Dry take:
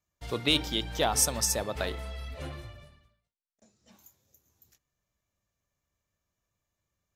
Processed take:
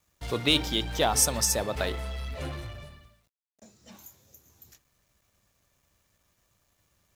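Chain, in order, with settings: companding laws mixed up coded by mu; trim +1.5 dB

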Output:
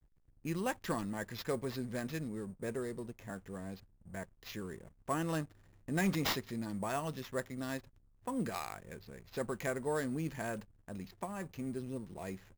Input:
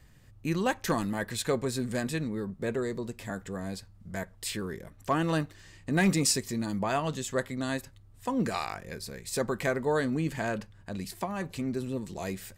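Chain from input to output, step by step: level-controlled noise filter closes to 2 kHz, open at -23 dBFS; hysteresis with a dead band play -47 dBFS; sample-rate reducer 9 kHz, jitter 0%; trim -7.5 dB

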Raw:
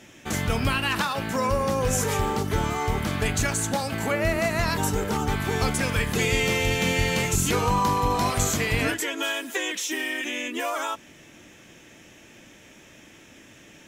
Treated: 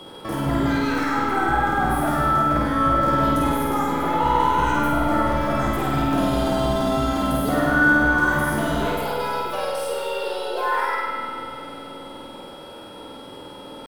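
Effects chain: in parallel at +2.5 dB: compression, threshold -41 dBFS, peak gain reduction 21 dB; on the sum: pitch shift +7 st; saturation -20.5 dBFS, distortion -13 dB; resonant high shelf 1.9 kHz -11 dB, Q 1.5; whistle 3.3 kHz -42 dBFS; on a send: flutter echo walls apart 8.7 m, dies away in 1.2 s; on the sum: spring tank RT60 3.4 s, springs 47 ms, chirp 25 ms, DRR 1 dB

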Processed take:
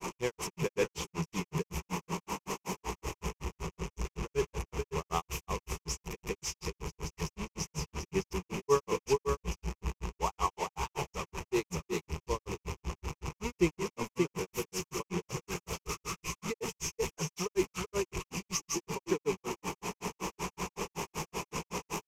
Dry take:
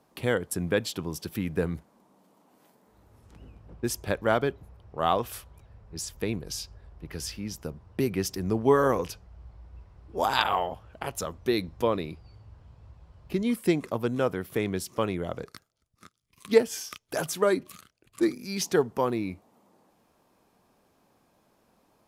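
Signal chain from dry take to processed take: one-bit delta coder 64 kbps, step -24.5 dBFS; rippled EQ curve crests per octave 0.76, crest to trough 13 dB; delay 458 ms -4 dB; granulator 129 ms, grains 5.3 per s, pitch spread up and down by 0 st; trim -6 dB

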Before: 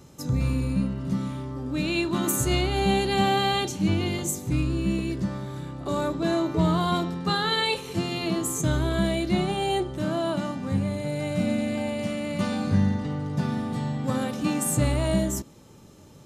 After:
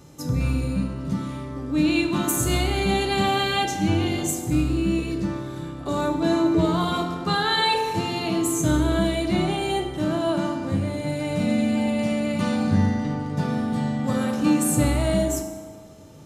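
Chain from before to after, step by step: FDN reverb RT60 1.8 s, low-frequency decay 0.85×, high-frequency decay 0.55×, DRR 3.5 dB; trim +1 dB

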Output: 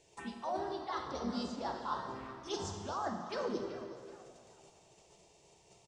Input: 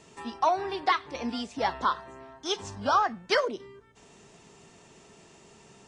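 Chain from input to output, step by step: gate -52 dBFS, range -11 dB; reverse; compression 16:1, threshold -36 dBFS, peak gain reduction 18 dB; reverse; touch-sensitive phaser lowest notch 210 Hz, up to 2.6 kHz, full sweep at -38.5 dBFS; plate-style reverb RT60 2 s, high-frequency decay 0.85×, DRR 3 dB; harmony voices -3 st -6 dB; on a send: frequency-shifting echo 378 ms, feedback 37%, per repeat +130 Hz, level -16 dB; on the sum: trim +1 dB

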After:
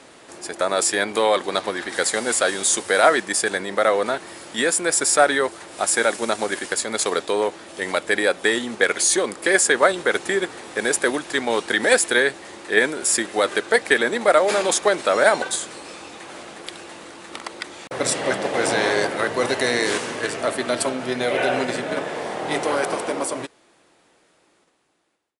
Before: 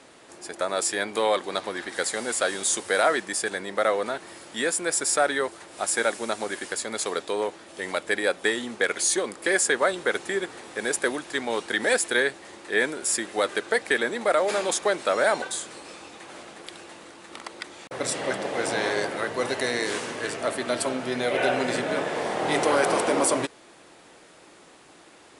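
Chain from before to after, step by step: fade out at the end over 5.89 s; in parallel at -1 dB: level held to a coarse grid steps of 10 dB; on the sum: trim +2 dB

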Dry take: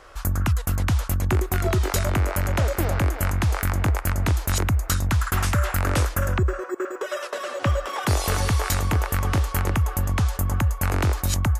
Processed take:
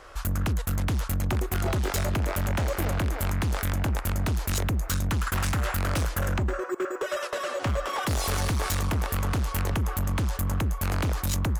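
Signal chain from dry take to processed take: overload inside the chain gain 23.5 dB

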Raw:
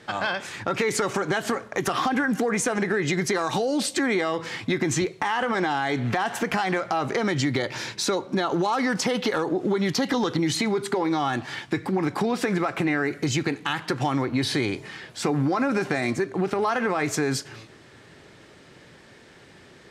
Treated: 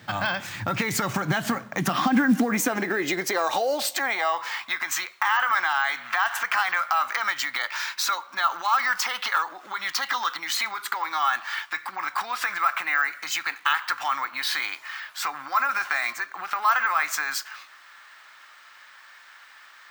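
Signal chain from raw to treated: high-pass sweep 94 Hz -> 1.2 kHz, 0.90–4.86 s; peaking EQ 420 Hz -12.5 dB 0.63 oct; modulation noise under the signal 32 dB; careless resampling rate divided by 2×, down none, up hold; trim +1 dB

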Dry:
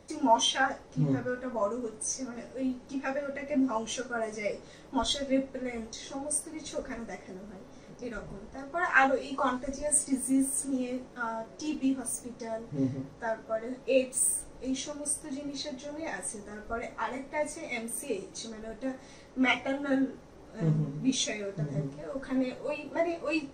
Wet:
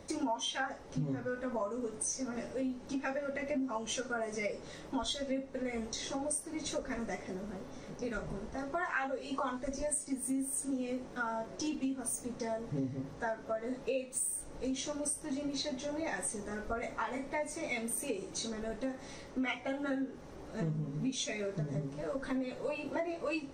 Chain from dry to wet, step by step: compression 6:1, threshold -36 dBFS, peak gain reduction 17.5 dB; trim +3 dB

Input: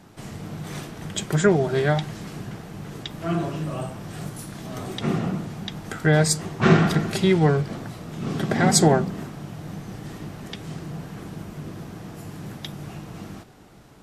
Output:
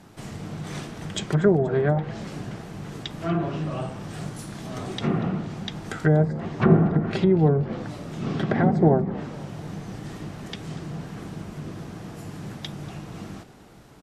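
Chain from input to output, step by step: low-pass that closes with the level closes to 710 Hz, closed at -15.5 dBFS; frequency-shifting echo 239 ms, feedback 48%, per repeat +70 Hz, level -20 dB

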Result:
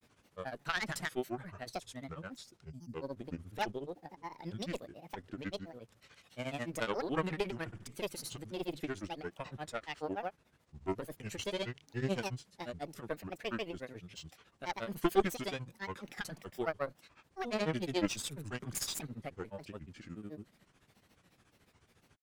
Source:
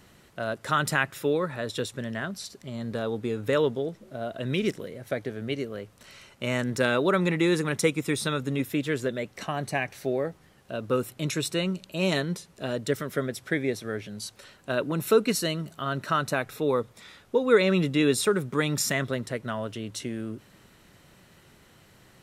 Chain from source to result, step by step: Chebyshev shaper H 4 -12 dB, 7 -31 dB, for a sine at -7.5 dBFS; granulator, grains 14 per s, pitch spread up and down by 7 st; time-frequency box 2.70–2.93 s, 320–4500 Hz -18 dB; trim -7 dB

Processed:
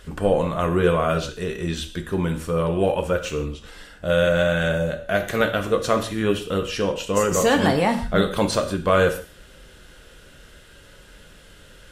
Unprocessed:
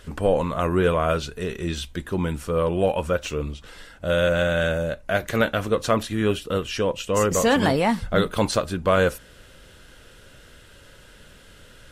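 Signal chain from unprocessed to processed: gated-style reverb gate 190 ms falling, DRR 6 dB

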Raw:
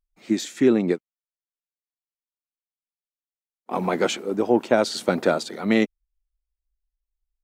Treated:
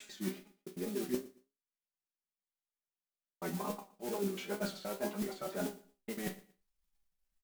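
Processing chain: slices played last to first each 95 ms, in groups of 6; treble shelf 4 kHz -11.5 dB; comb 5 ms, depth 99%; reverse; compression 10:1, threshold -28 dBFS, peak gain reduction 19.5 dB; reverse; modulation noise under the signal 11 dB; chord resonator C2 sus4, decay 0.26 s; wow and flutter 94 cents; on a send: feedback delay 116 ms, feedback 25%, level -20 dB; on the sum: trim +3 dB

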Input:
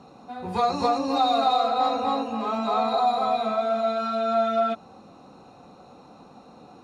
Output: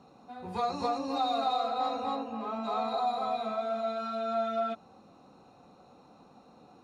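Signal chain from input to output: 2.15–2.63 s: treble shelf 4.8 kHz -> 3.7 kHz -9.5 dB; trim -8 dB

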